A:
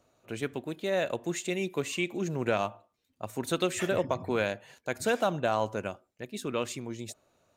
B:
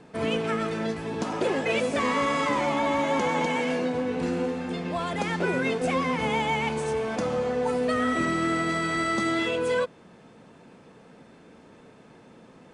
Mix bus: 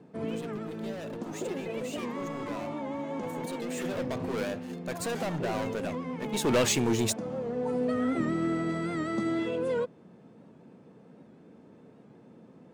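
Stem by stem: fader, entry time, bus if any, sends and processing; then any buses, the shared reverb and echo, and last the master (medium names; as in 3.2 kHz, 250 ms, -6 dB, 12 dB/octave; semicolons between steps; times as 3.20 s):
3.65 s -23 dB -> 4.04 s -14.5 dB -> 6.20 s -14.5 dB -> 6.52 s -4 dB, 0.00 s, no send, hum notches 50/100 Hz; waveshaping leveller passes 5
-6.0 dB, 0.00 s, no send, high-pass 120 Hz 12 dB/octave; tilt shelf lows +7.5 dB, about 700 Hz; auto duck -6 dB, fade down 0.40 s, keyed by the first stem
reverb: none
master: warped record 78 rpm, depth 100 cents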